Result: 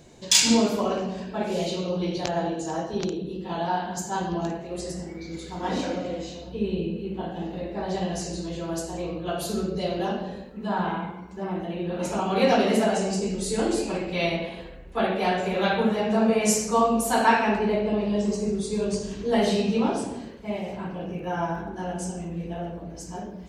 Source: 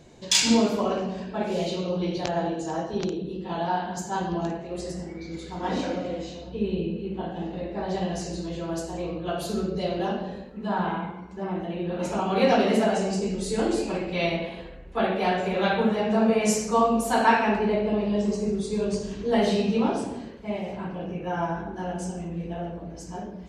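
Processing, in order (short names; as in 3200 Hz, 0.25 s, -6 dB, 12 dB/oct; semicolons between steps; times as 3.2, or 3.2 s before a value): high shelf 7500 Hz +8.5 dB; 21.08–21.68 crackle 59/s -48 dBFS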